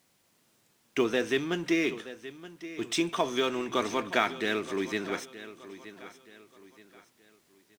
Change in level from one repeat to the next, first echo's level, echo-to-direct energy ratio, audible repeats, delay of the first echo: −9.0 dB, −15.0 dB, −14.5 dB, 3, 924 ms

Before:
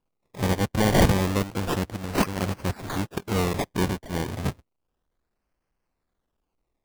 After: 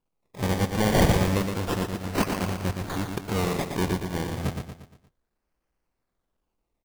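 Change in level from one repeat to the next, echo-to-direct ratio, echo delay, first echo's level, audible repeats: −7.0 dB, −4.5 dB, 117 ms, −5.5 dB, 5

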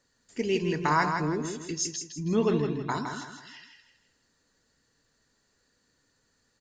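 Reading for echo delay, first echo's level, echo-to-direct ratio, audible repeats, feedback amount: 161 ms, −6.0 dB, −5.5 dB, 4, 37%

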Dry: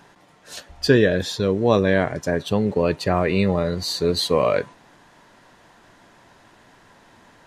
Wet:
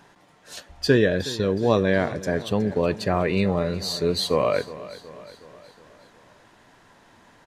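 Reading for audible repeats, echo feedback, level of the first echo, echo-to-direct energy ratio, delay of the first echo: 4, 55%, −16.5 dB, −15.0 dB, 367 ms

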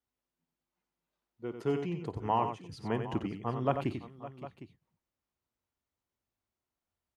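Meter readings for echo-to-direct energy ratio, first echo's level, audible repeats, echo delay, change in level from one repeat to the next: −6.0 dB, −18.5 dB, 4, 53 ms, repeats not evenly spaced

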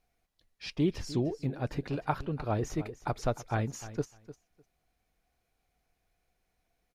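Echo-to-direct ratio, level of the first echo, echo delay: −15.0 dB, −15.0 dB, 302 ms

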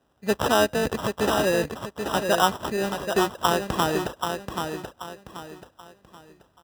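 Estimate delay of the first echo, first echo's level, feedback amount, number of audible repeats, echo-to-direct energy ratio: 782 ms, −6.0 dB, 33%, 4, −5.5 dB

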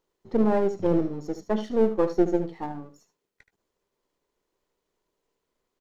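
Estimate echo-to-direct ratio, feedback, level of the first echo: −11.5 dB, repeats not evenly spaced, −11.5 dB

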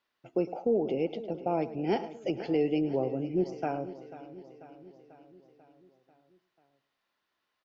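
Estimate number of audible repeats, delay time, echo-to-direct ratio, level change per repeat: 8, 107 ms, −11.5 dB, repeats not evenly spaced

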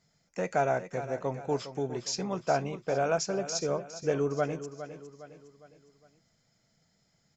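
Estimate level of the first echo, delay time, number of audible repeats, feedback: −12.0 dB, 409 ms, 4, 44%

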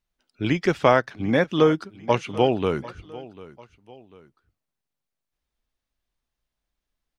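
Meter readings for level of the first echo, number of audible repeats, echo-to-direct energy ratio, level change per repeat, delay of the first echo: −19.0 dB, 2, −18.5 dB, −7.5 dB, 745 ms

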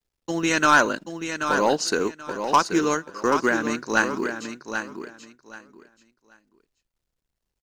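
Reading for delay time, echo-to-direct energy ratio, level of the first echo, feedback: 782 ms, −8.0 dB, −8.0 dB, 21%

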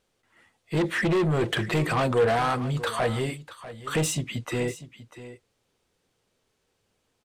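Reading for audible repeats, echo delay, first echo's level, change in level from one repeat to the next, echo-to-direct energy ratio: 1, 644 ms, −15.0 dB, repeats not evenly spaced, −15.0 dB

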